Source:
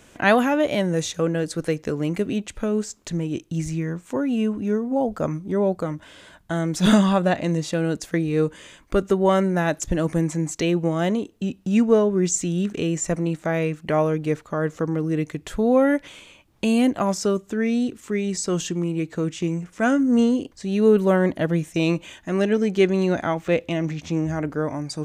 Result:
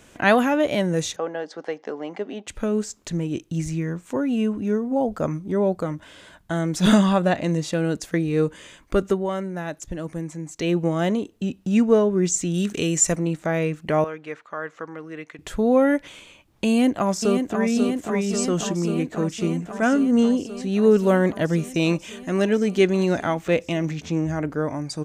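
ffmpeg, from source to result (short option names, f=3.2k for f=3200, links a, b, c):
-filter_complex "[0:a]asettb=1/sr,asplit=3[a][b][c];[a]atrim=end=1.164[d];[b]atrim=start=1.16:end=2.47,asetpts=PTS-STARTPTS,afade=t=in:d=0.004:c=qsin,afade=t=out:st=1.306:d=0.004:c=qsin,highpass=f=290:w=0.5412,highpass=f=290:w=1.3066,equalizer=f=330:t=q:w=4:g=-9,equalizer=f=490:t=q:w=4:g=-4,equalizer=f=790:t=q:w=4:g=9,equalizer=f=1.4k:t=q:w=4:g=-4,equalizer=f=2.5k:t=q:w=4:g=-9,equalizer=f=4k:t=q:w=4:g=-8,lowpass=f=4.7k:w=0.5412,lowpass=f=4.7k:w=1.3066[e];[c]atrim=start=2.466[f];[d][e]acrossfade=d=0.004:c1=hsin:c2=qsin[g];[g][f]acrossfade=d=0.004:c1=qsin:c2=hsin,asettb=1/sr,asplit=3[h][i][j];[h]atrim=end=12.544[k];[i]atrim=start=12.54:end=13.16,asetpts=PTS-STARTPTS,afade=t=in:d=0.004:c=qsin,afade=t=out:st=0.616:d=0.004:c=qsin,highshelf=f=3.3k:g=11.5[l];[j]atrim=start=13.156[m];[k][l]acrossfade=d=0.004:c1=hsin:c2=qsin[n];[n][m]acrossfade=d=0.004:c1=qsin:c2=hsin,asettb=1/sr,asplit=3[o][p][q];[o]atrim=end=14.044[r];[p]atrim=start=14.04:end=15.39,asetpts=PTS-STARTPTS,afade=t=in:d=0.004:c=qsin,afade=t=out:st=1.346:d=0.004:c=qsin,bandpass=f=1.6k:t=q:w=0.88[s];[q]atrim=start=15.386[t];[r][s]acrossfade=d=0.004:c1=hsin:c2=qsin[u];[u][t]acrossfade=d=0.004:c1=qsin:c2=hsin,asplit=2[v][w];[w]afade=t=in:st=16.68:d=0.01,afade=t=out:st=17.61:d=0.01,aecho=0:1:540|1080|1620|2160|2700|3240|3780|4320|4860|5400|5940|6480:0.501187|0.40095|0.32076|0.256608|0.205286|0.164229|0.131383|0.105107|0.0840853|0.0672682|0.0538146|0.0430517[x];[v][x]amix=inputs=2:normalize=0,asettb=1/sr,asplit=3[y][z][aa];[y]atrim=end=21.044[ab];[z]atrim=start=21.04:end=24.02,asetpts=PTS-STARTPTS,afade=t=in:d=0.004:c=qsin,afade=t=out:st=2.976:d=0.004:c=qsin,highshelf=f=4.5k:g=4.5[ac];[aa]atrim=start=24.016[ad];[ab][ac]acrossfade=d=0.004:c1=hsin:c2=qsin[ae];[ae][ad]acrossfade=d=0.004:c1=qsin:c2=hsin,asplit=3[af][ag][ah];[af]atrim=end=9.27,asetpts=PTS-STARTPTS,afade=t=out:st=9.08:d=0.19:silence=0.375837[ai];[ag]atrim=start=9.27:end=10.53,asetpts=PTS-STARTPTS,volume=-8.5dB[aj];[ah]atrim=start=10.53,asetpts=PTS-STARTPTS,afade=t=in:d=0.19:silence=0.375837[ak];[ai][aj][ak]concat=n=3:v=0:a=1"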